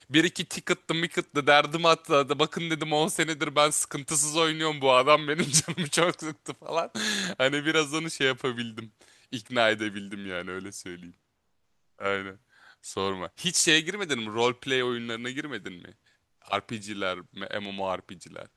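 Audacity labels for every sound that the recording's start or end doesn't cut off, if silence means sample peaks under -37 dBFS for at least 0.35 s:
9.330000	11.070000	sound
12.010000	12.320000	sound
12.850000	15.900000	sound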